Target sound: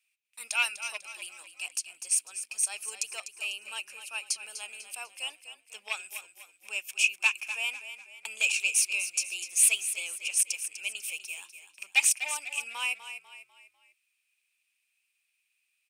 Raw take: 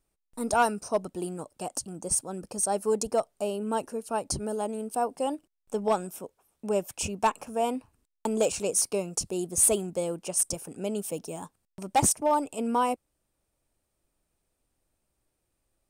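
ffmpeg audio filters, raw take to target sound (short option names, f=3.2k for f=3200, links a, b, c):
-filter_complex "[0:a]highpass=f=2.5k:t=q:w=8.8,asplit=5[a][b][c][d][e];[b]adelay=248,afreqshift=-34,volume=-11dB[f];[c]adelay=496,afreqshift=-68,volume=-18.5dB[g];[d]adelay=744,afreqshift=-102,volume=-26.1dB[h];[e]adelay=992,afreqshift=-136,volume=-33.6dB[i];[a][f][g][h][i]amix=inputs=5:normalize=0"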